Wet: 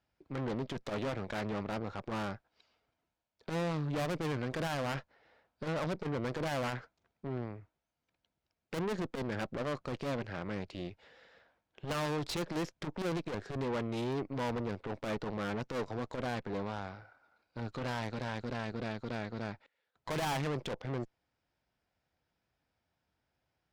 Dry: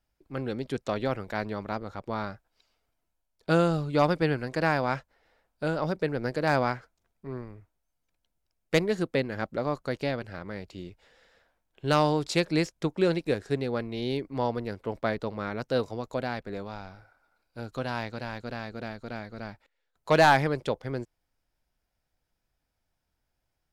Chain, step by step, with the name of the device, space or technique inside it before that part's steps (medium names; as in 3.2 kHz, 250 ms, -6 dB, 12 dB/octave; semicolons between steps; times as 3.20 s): valve radio (band-pass 84–4400 Hz; valve stage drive 37 dB, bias 0.75; transformer saturation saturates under 140 Hz); trim +6 dB